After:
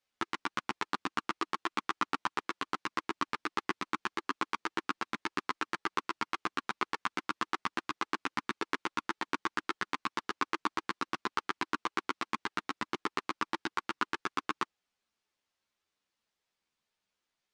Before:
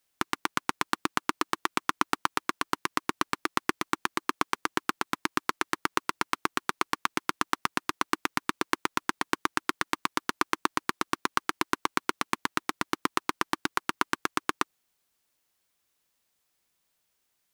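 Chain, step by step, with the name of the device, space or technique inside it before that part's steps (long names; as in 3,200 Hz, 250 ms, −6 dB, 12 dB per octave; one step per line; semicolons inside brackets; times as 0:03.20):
string-machine ensemble chorus (string-ensemble chorus; low-pass filter 5,200 Hz 12 dB per octave)
low-shelf EQ 72 Hz −5.5 dB
level −2 dB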